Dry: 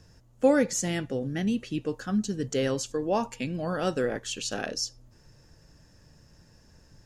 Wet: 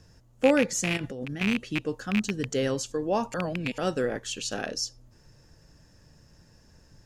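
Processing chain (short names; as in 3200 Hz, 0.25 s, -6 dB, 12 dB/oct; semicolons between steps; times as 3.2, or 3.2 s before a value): rattling part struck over -30 dBFS, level -16 dBFS; 0.97–1.41 negative-ratio compressor -35 dBFS, ratio -1; 3.34–3.78 reverse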